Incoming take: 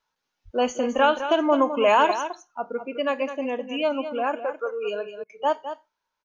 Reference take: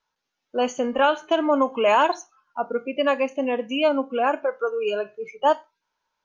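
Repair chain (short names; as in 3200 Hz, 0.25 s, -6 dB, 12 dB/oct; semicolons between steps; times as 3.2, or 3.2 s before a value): 0.44–0.56 HPF 140 Hz 24 dB/oct; interpolate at 5.24, 54 ms; inverse comb 0.209 s -10.5 dB; 2.41 gain correction +4 dB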